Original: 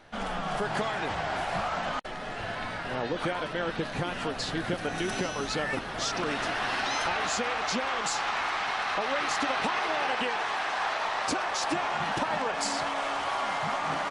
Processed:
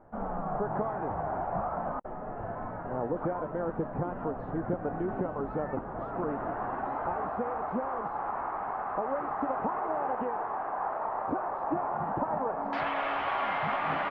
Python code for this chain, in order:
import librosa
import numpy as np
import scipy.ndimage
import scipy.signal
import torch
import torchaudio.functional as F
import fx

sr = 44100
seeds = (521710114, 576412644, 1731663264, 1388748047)

y = fx.lowpass(x, sr, hz=fx.steps((0.0, 1100.0), (12.73, 2800.0)), slope=24)